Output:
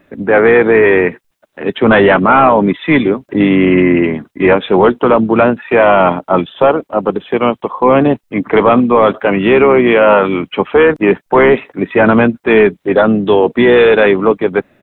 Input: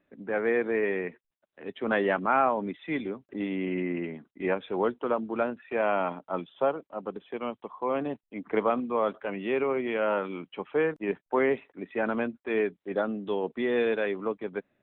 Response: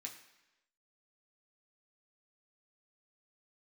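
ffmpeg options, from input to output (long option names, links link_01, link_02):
-filter_complex "[0:a]asplit=3[link_01][link_02][link_03];[link_02]asetrate=22050,aresample=44100,atempo=2,volume=-16dB[link_04];[link_03]asetrate=37084,aresample=44100,atempo=1.18921,volume=-17dB[link_05];[link_01][link_04][link_05]amix=inputs=3:normalize=0,apsyclip=23.5dB,volume=-2dB"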